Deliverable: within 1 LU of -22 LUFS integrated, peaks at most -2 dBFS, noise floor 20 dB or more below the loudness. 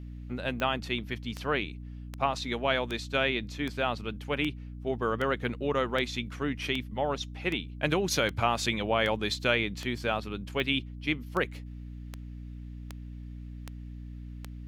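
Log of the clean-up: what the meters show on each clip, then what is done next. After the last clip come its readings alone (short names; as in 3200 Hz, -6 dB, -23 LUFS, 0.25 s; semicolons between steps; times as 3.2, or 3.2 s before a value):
clicks 19; hum 60 Hz; harmonics up to 300 Hz; hum level -39 dBFS; loudness -30.5 LUFS; peak -10.5 dBFS; loudness target -22.0 LUFS
-> de-click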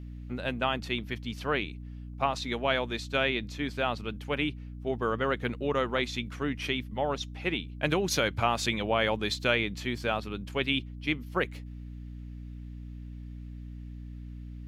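clicks 0; hum 60 Hz; harmonics up to 300 Hz; hum level -39 dBFS
-> notches 60/120/180/240/300 Hz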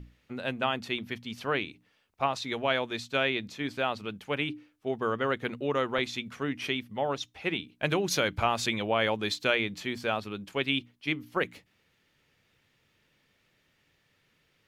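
hum none; loudness -30.5 LUFS; peak -11.0 dBFS; loudness target -22.0 LUFS
-> gain +8.5 dB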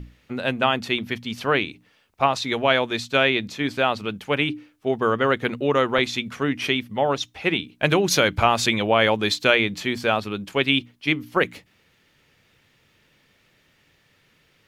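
loudness -22.0 LUFS; peak -2.5 dBFS; noise floor -62 dBFS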